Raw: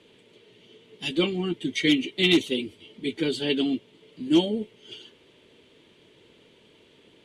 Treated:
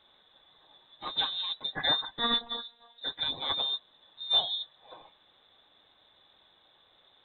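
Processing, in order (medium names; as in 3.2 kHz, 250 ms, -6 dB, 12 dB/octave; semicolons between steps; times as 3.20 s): 1.05–1.62 s: comb filter that takes the minimum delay 0.36 ms; frequency inversion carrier 3.9 kHz; 2.19–3.01 s: robot voice 235 Hz; trim -6.5 dB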